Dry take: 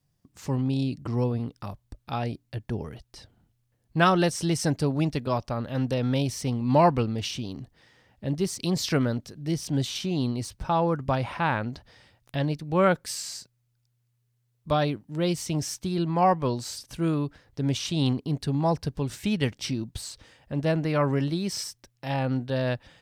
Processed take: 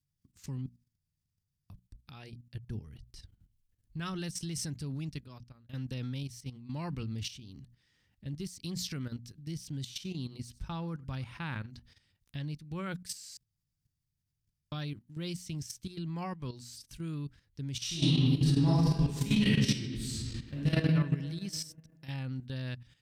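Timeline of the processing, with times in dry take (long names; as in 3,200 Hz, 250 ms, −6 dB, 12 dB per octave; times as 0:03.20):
0:00.66–0:01.70: fill with room tone
0:02.87–0:04.14: low-shelf EQ 110 Hz +9.5 dB
0:04.93–0:05.69: fade out
0:06.23–0:06.84: expander for the loud parts, over −34 dBFS
0:09.80–0:11.70: single-tap delay 96 ms −21.5 dB
0:13.37–0:14.72: fill with room tone
0:17.81–0:20.80: thrown reverb, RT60 1.8 s, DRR −11 dB
whole clip: guitar amp tone stack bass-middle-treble 6-0-2; mains-hum notches 60/120/180/240 Hz; output level in coarse steps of 12 dB; level +11.5 dB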